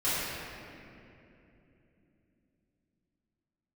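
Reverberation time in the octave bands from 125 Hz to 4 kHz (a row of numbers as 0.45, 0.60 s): 4.6, 4.8, 3.5, 2.4, 2.6, 1.7 s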